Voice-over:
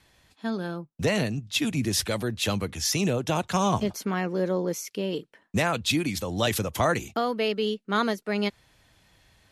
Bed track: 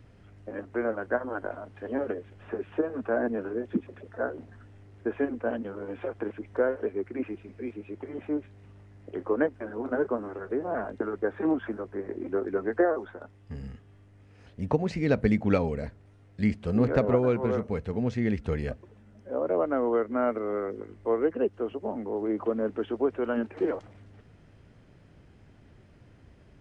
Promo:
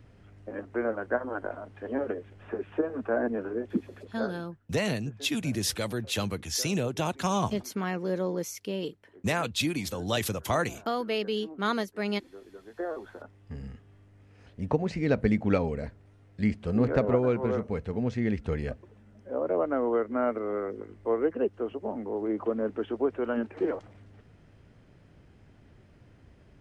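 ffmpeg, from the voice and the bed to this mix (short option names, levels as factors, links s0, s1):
-filter_complex "[0:a]adelay=3700,volume=0.668[s0];[1:a]volume=7.94,afade=t=out:st=4.06:d=0.54:silence=0.112202,afade=t=in:st=12.71:d=0.54:silence=0.11885[s1];[s0][s1]amix=inputs=2:normalize=0"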